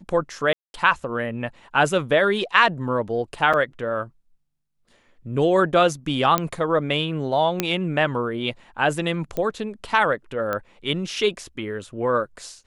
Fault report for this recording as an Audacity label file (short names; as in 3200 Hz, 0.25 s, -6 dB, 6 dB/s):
0.530000	0.740000	gap 0.211 s
3.530000	3.540000	gap 6 ms
6.380000	6.380000	pop -6 dBFS
7.600000	7.600000	pop -5 dBFS
9.370000	9.370000	pop -14 dBFS
10.530000	10.530000	pop -13 dBFS